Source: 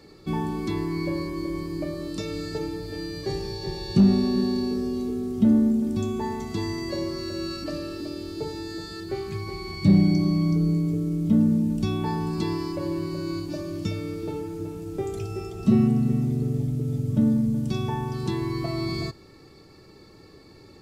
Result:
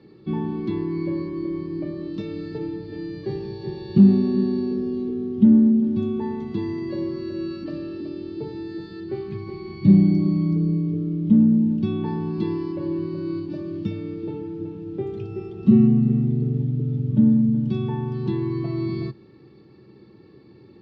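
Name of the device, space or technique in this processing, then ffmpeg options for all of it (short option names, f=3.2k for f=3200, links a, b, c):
guitar cabinet: -af "highpass=81,equalizer=f=130:t=q:w=4:g=8,equalizer=f=210:t=q:w=4:g=9,equalizer=f=350:t=q:w=4:g=7,equalizer=f=660:t=q:w=4:g=-6,equalizer=f=1.3k:t=q:w=4:g=-5,equalizer=f=2.2k:t=q:w=4:g=-4,lowpass=f=3.6k:w=0.5412,lowpass=f=3.6k:w=1.3066,volume=-3dB"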